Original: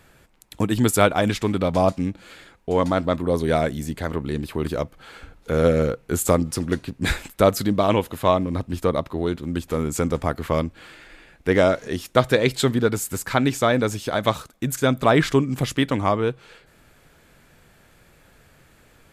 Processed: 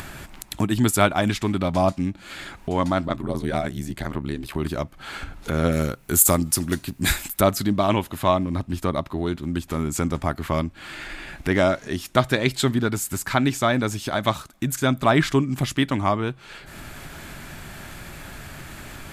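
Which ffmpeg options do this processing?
-filter_complex "[0:a]asettb=1/sr,asplit=3[a][b][c];[a]atrim=end=3.074[d];[b]atrim=start=3.07:end=4.57,asetpts=PTS-STARTPTS,afade=t=in:d=0.004:c=qsin,afade=t=out:st=1.496:d=0.004:c=qsin,aeval=exprs='val(0)*sin(2*PI*35*n/s)':c=same[e];[c]atrim=start=4.566[f];[d][e]acrossfade=d=0.004:c1=hsin:c2=qsin[g];[g][f]acrossfade=d=0.004:c1=qsin:c2=hsin,asettb=1/sr,asplit=3[h][i][j];[h]atrim=end=5.724[k];[i]atrim=start=5.72:end=7.41,asetpts=PTS-STARTPTS,afade=t=in:d=0.004:c=qsin,afade=t=out:st=1.686:d=0.004:c=qsin,aemphasis=mode=production:type=50fm[l];[j]atrim=start=7.406[m];[k][l]acrossfade=d=0.004:c1=hsin:c2=qsin[n];[n][m]acrossfade=d=0.004:c1=qsin:c2=hsin,equalizer=f=480:w=6.1:g=-14,acompressor=mode=upward:threshold=-23dB:ratio=2.5"

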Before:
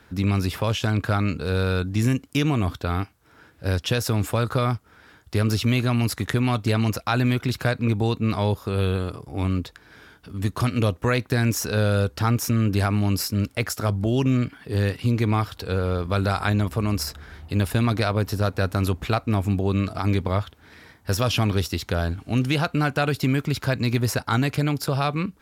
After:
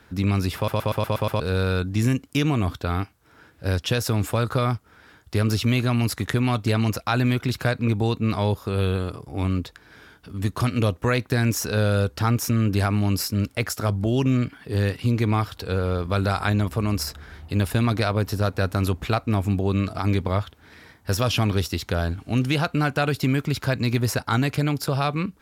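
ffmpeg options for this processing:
-filter_complex "[0:a]asplit=8[a][b][c][d][e][f][g][h];[a]atrim=end=0.682[i];[b]atrim=start=0.558:end=0.682[j];[c]atrim=start=0.558:end=0.682[k];[d]atrim=start=0.558:end=0.682[l];[e]atrim=start=0.558:end=0.682[m];[f]atrim=start=0.558:end=0.682[n];[g]atrim=start=0.558:end=0.682[o];[h]atrim=start=1.398[p];[i][j]acrossfade=d=0.004:c1=hsin:c2=hsin[q];[q][k]acrossfade=d=0.004:c1=hsin:c2=hsin[r];[r][l]acrossfade=d=0.004:c1=hsin:c2=hsin[s];[s][m]acrossfade=d=0.004:c1=hsin:c2=hsin[t];[t][n]acrossfade=d=0.004:c1=hsin:c2=hsin[u];[u][o]acrossfade=d=0.004:c1=hsin:c2=hsin[v];[v][p]acrossfade=d=0.004:c1=hsin:c2=hsin"

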